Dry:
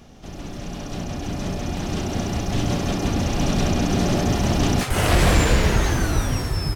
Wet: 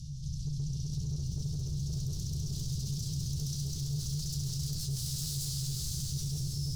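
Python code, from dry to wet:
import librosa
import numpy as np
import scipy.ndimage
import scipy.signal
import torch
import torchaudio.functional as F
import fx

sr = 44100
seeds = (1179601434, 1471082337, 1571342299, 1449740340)

p1 = scipy.signal.sosfilt(scipy.signal.butter(2, 9200.0, 'lowpass', fs=sr, output='sos'), x)
p2 = 10.0 ** (-23.0 / 20.0) * (np.abs((p1 / 10.0 ** (-23.0 / 20.0) + 3.0) % 4.0 - 2.0) - 1.0)
p3 = scipy.signal.sosfilt(scipy.signal.ellip(3, 1.0, 40, [140.0, 4600.0], 'bandstop', fs=sr, output='sos'), p2)
p4 = fx.peak_eq(p3, sr, hz=140.0, db=13.5, octaves=0.31)
p5 = fx.comb_fb(p4, sr, f0_hz=73.0, decay_s=0.15, harmonics='all', damping=0.0, mix_pct=80)
p6 = np.clip(p5, -10.0 ** (-32.5 / 20.0), 10.0 ** (-32.5 / 20.0))
p7 = p5 + F.gain(torch.from_numpy(p6), -4.0).numpy()
p8 = fx.rider(p7, sr, range_db=4, speed_s=0.5)
p9 = fx.echo_diffused(p8, sr, ms=518, feedback_pct=42, wet_db=-4)
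p10 = fx.env_flatten(p9, sr, amount_pct=50)
y = F.gain(torch.from_numpy(p10), -8.5).numpy()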